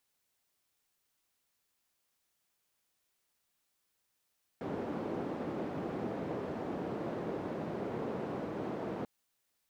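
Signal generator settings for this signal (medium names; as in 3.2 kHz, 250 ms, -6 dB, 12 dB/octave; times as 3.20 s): noise band 180–430 Hz, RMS -38 dBFS 4.44 s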